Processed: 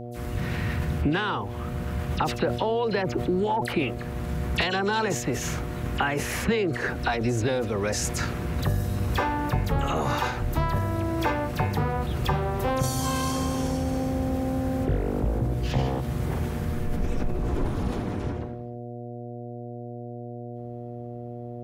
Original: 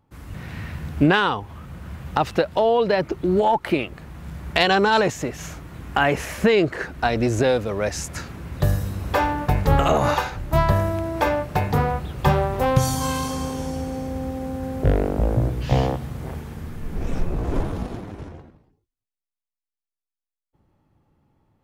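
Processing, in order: peaking EQ 630 Hz -7.5 dB 0.39 oct; compression 5:1, threshold -29 dBFS, peak gain reduction 15.5 dB; phase dispersion lows, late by 47 ms, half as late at 2.7 kHz; mains buzz 120 Hz, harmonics 6, -43 dBFS -3 dB/octave; decay stretcher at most 72 dB/s; trim +5.5 dB

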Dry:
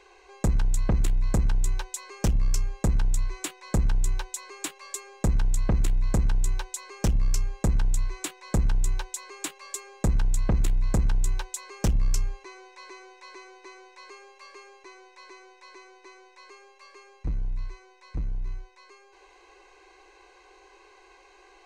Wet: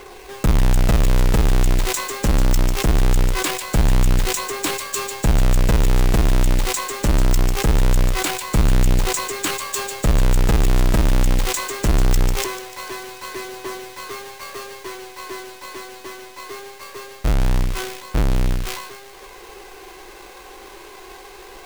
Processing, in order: square wave that keeps the level; in parallel at -1 dB: compression, threshold -29 dBFS, peak gain reduction 9.5 dB; on the sum: peak limiter -18 dBFS, peak gain reduction 5 dB; phaser 0.22 Hz, delay 3.8 ms, feedback 21%; on a send: feedback echo behind a high-pass 147 ms, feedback 68%, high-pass 2.4 kHz, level -6.5 dB; on the sum: decay stretcher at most 57 dB/s; trim +4 dB

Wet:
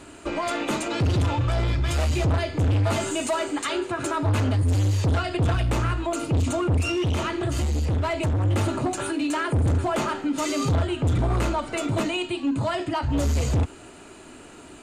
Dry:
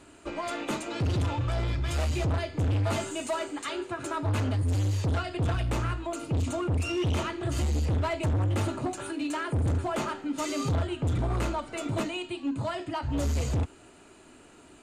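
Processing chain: peak limiter -27 dBFS, peak gain reduction 4.5 dB; 6.88–8.45 s: compression, threshold -30 dBFS, peak gain reduction 2.5 dB; trim +8.5 dB

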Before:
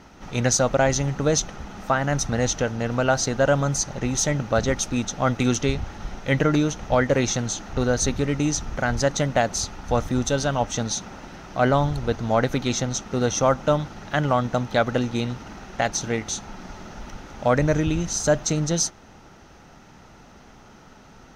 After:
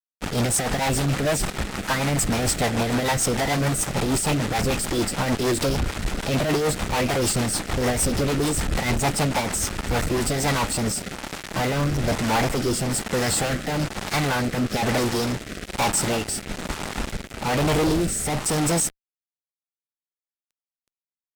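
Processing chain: formant shift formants +5 st; fuzz box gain 40 dB, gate -36 dBFS; rotary cabinet horn 6.7 Hz, later 1.1 Hz, at 9.72 s; trim -5 dB

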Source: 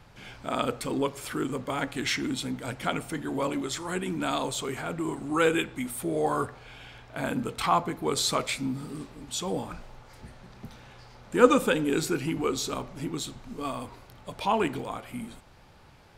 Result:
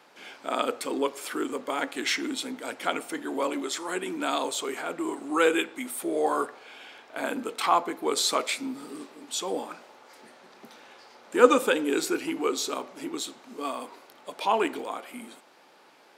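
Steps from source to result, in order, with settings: high-pass 280 Hz 24 dB/octave; trim +1.5 dB

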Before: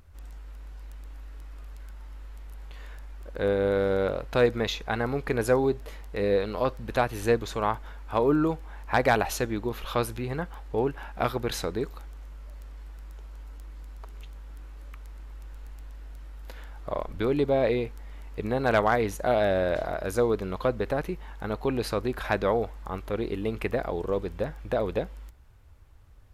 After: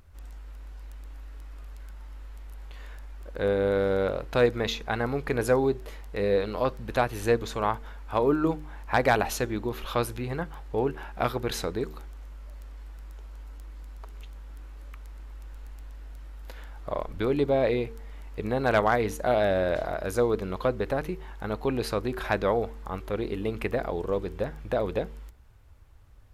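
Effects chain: de-hum 75.74 Hz, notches 6

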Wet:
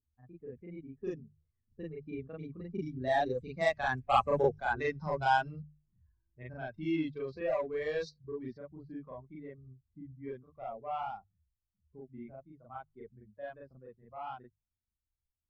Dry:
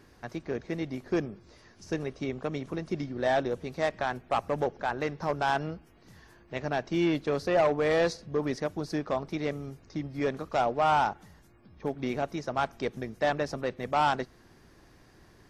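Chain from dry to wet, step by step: expander on every frequency bin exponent 2; Doppler pass-by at 4.26 s, 16 m/s, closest 8.5 m; steep low-pass 8 kHz; hum notches 50/100/150 Hz; level-controlled noise filter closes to 1 kHz, open at -38.5 dBFS; in parallel at -1.5 dB: compression, threshold -55 dBFS, peak gain reduction 23.5 dB; on the sum: level-controlled noise filter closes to 2 kHz, open at -39 dBFS; reverse echo 39 ms -3.5 dB; trim +7 dB

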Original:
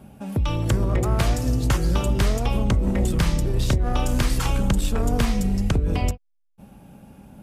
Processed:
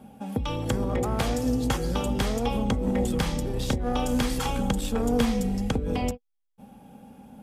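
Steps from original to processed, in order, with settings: bass shelf 360 Hz -6 dB; small resonant body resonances 240/480/790/3300 Hz, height 11 dB, ringing for 50 ms; trim -3.5 dB

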